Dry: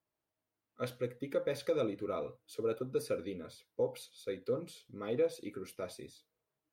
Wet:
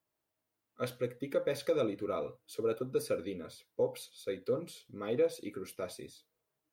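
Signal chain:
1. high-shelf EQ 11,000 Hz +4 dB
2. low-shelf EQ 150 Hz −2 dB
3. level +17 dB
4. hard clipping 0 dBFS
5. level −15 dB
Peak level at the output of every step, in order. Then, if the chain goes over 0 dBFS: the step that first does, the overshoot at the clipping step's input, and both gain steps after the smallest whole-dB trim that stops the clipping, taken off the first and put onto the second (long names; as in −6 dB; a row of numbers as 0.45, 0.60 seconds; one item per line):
−22.0, −22.0, −5.0, −5.0, −20.0 dBFS
no step passes full scale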